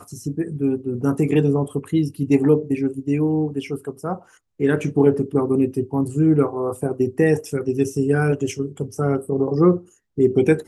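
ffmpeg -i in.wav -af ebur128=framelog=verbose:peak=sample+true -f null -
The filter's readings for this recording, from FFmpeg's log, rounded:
Integrated loudness:
  I:         -20.8 LUFS
  Threshold: -31.0 LUFS
Loudness range:
  LRA:         1.7 LU
  Threshold: -41.0 LUFS
  LRA low:   -21.9 LUFS
  LRA high:  -20.1 LUFS
Sample peak:
  Peak:       -3.9 dBFS
True peak:
  Peak:       -3.9 dBFS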